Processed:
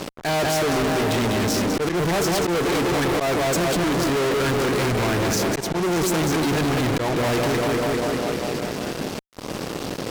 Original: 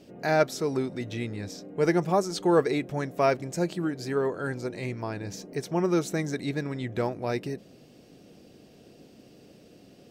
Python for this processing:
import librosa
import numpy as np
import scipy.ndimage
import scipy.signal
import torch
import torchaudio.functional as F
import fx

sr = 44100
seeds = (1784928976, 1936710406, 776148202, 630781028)

y = fx.echo_tape(x, sr, ms=198, feedback_pct=70, wet_db=-6, lp_hz=3600.0, drive_db=5.0, wow_cents=5)
y = fx.auto_swell(y, sr, attack_ms=341.0)
y = fx.fuzz(y, sr, gain_db=52.0, gate_db=-52.0)
y = y * 10.0 ** (-7.0 / 20.0)